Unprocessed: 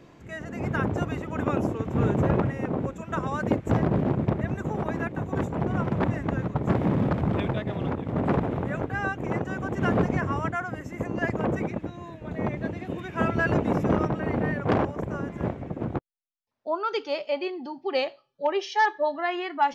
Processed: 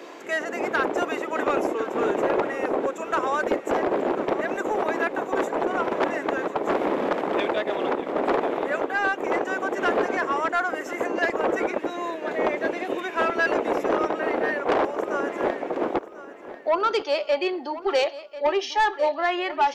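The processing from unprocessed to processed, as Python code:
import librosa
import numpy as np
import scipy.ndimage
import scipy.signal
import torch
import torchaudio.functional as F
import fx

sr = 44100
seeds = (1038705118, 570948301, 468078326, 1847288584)

p1 = scipy.signal.sosfilt(scipy.signal.butter(4, 350.0, 'highpass', fs=sr, output='sos'), x)
p2 = fx.rider(p1, sr, range_db=10, speed_s=0.5)
p3 = p1 + F.gain(torch.from_numpy(p2), 2.5).numpy()
p4 = 10.0 ** (-14.5 / 20.0) * np.tanh(p3 / 10.0 ** (-14.5 / 20.0))
y = fx.echo_feedback(p4, sr, ms=1042, feedback_pct=34, wet_db=-15)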